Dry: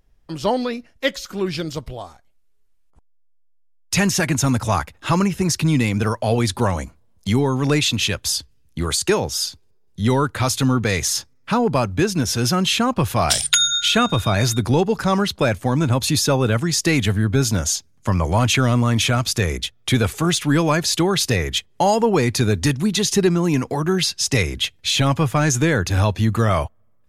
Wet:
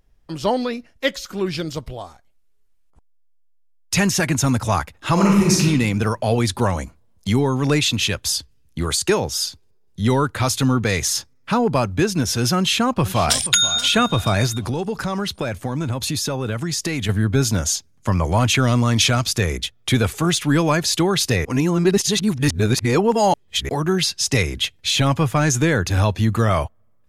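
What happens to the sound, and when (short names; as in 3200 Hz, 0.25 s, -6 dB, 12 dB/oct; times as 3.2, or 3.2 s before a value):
5.13–5.63 reverb throw, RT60 0.91 s, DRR -3 dB
12.57–13.5 echo throw 0.48 s, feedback 40%, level -14.5 dB
14.46–17.09 compressor 4:1, threshold -20 dBFS
18.67–19.27 bell 5000 Hz +7 dB 1 oct
21.45–23.69 reverse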